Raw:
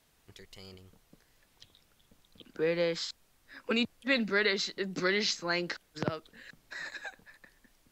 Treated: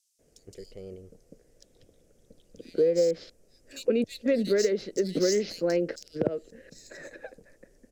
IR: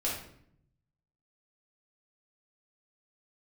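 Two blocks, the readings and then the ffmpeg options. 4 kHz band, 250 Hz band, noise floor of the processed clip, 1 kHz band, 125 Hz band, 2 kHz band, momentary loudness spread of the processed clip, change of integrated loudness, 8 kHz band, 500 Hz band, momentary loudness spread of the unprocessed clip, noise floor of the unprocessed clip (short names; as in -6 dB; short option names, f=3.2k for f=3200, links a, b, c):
-5.5 dB, +5.0 dB, -65 dBFS, n/a, +2.5 dB, -9.5 dB, 20 LU, +4.0 dB, +5.0 dB, +8.5 dB, 18 LU, -69 dBFS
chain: -filter_complex "[0:a]aexciter=amount=6.6:drive=6.6:freq=5.4k,equalizer=f=100:w=0.46:g=-3.5,adynamicsmooth=sensitivity=5:basefreq=4.2k,lowshelf=f=710:t=q:w=3:g=11,acrossover=split=3400[a][b];[a]adelay=190[c];[c][b]amix=inputs=2:normalize=0,acompressor=threshold=-18dB:ratio=4,volume=-3dB"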